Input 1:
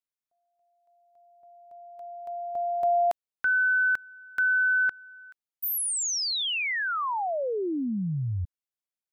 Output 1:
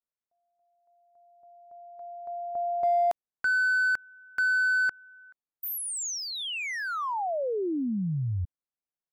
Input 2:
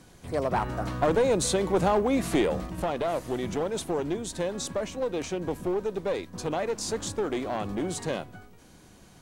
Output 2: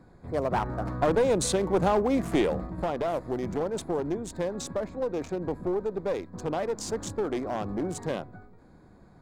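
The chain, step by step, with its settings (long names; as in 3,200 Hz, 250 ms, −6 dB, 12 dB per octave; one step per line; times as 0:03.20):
adaptive Wiener filter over 15 samples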